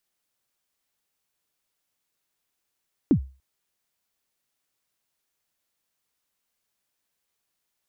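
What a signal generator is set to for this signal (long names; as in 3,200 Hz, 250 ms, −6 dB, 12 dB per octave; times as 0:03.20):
synth kick length 0.29 s, from 340 Hz, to 66 Hz, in 87 ms, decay 0.33 s, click off, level −11 dB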